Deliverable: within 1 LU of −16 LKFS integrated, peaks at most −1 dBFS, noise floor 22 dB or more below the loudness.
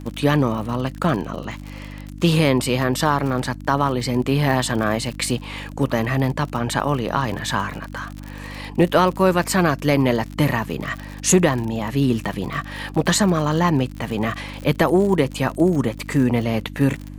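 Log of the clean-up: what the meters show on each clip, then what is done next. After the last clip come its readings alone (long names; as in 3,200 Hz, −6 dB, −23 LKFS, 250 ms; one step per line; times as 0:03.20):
crackle rate 54 per second; mains hum 50 Hz; hum harmonics up to 300 Hz; level of the hum −33 dBFS; integrated loudness −20.5 LKFS; sample peak −3.5 dBFS; target loudness −16.0 LKFS
→ click removal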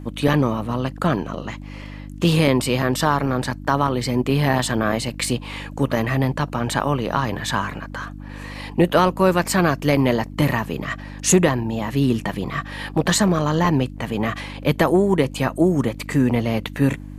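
crackle rate 0.17 per second; mains hum 50 Hz; hum harmonics up to 300 Hz; level of the hum −34 dBFS
→ hum removal 50 Hz, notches 6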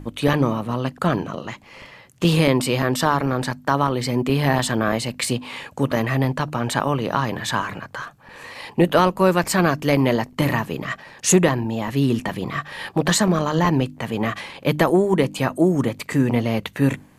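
mains hum none found; integrated loudness −21.0 LKFS; sample peak −3.5 dBFS; target loudness −16.0 LKFS
→ level +5 dB
brickwall limiter −1 dBFS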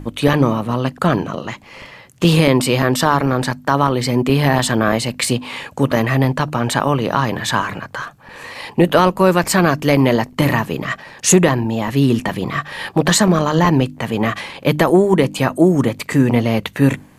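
integrated loudness −16.5 LKFS; sample peak −1.0 dBFS; background noise floor −44 dBFS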